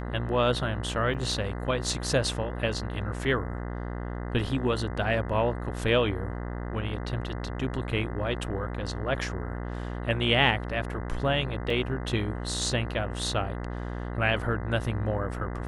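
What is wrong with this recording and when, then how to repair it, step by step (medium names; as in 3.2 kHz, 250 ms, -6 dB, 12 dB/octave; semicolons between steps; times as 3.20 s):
buzz 60 Hz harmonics 34 -34 dBFS
1.14–1.15 s: dropout 6.1 ms
11.70 s: dropout 3.4 ms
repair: de-hum 60 Hz, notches 34; interpolate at 1.14 s, 6.1 ms; interpolate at 11.70 s, 3.4 ms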